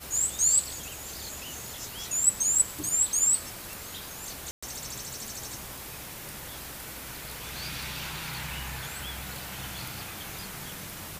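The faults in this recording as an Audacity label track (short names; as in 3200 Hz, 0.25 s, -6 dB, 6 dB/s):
4.510000	4.620000	gap 0.115 s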